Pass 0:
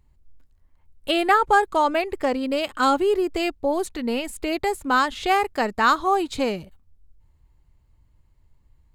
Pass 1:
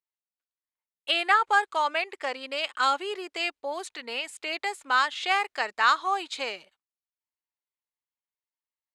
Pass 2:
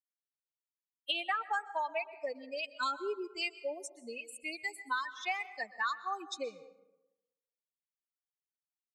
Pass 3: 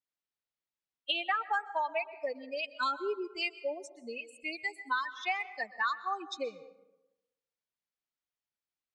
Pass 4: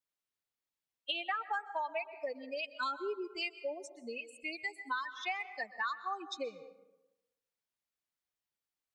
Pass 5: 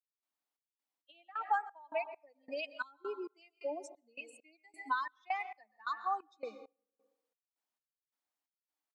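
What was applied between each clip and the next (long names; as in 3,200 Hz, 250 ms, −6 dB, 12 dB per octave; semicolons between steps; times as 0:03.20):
meter weighting curve ITU-R 468; noise gate with hold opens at −40 dBFS; bass and treble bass −12 dB, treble −12 dB; level −4.5 dB
spectral dynamics exaggerated over time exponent 3; downward compressor 6 to 1, threshold −33 dBFS, peak gain reduction 13 dB; dense smooth reverb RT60 1 s, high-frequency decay 0.5×, pre-delay 110 ms, DRR 15 dB; level +2 dB
low-pass filter 4,900 Hz 12 dB per octave; level +2.5 dB
downward compressor 1.5 to 1, threshold −40 dBFS, peak gain reduction 5.5 dB
Chebyshev high-pass with heavy ripple 210 Hz, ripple 9 dB; gate pattern "..xxx..xx." 133 BPM −24 dB; level +6 dB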